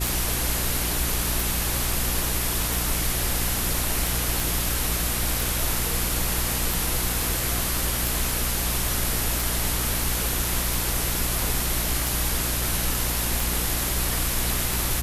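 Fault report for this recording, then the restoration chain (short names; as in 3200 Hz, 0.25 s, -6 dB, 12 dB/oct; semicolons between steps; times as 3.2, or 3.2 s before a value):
hum 60 Hz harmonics 6 -30 dBFS
tick 45 rpm
4.4 pop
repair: de-click; de-hum 60 Hz, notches 6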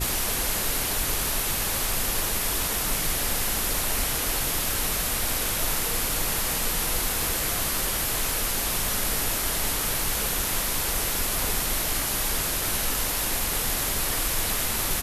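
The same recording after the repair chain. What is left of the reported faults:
none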